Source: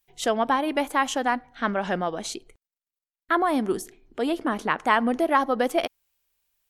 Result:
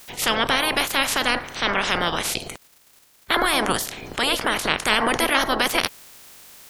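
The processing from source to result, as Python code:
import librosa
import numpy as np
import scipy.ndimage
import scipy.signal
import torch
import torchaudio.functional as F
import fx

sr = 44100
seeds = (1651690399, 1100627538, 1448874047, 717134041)

y = fx.spec_clip(x, sr, under_db=29)
y = fx.env_flatten(y, sr, amount_pct=50)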